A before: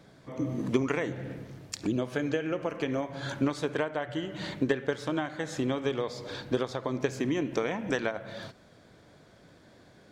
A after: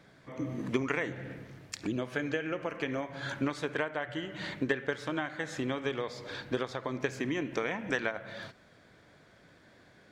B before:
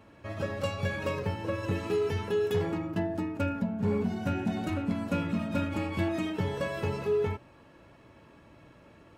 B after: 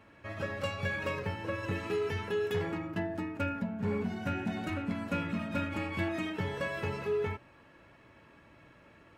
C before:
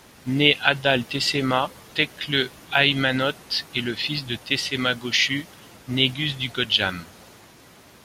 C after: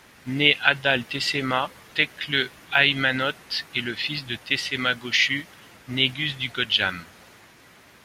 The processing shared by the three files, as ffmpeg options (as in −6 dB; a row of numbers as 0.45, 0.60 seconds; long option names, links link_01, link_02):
-af "equalizer=frequency=1900:width_type=o:width=1.4:gain=7,volume=-4.5dB"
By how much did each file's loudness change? −3.0, −3.5, −0.5 LU